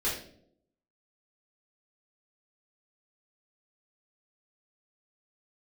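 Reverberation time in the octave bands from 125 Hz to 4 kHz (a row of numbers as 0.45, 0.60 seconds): 0.80, 0.90, 0.80, 0.50, 0.45, 0.45 seconds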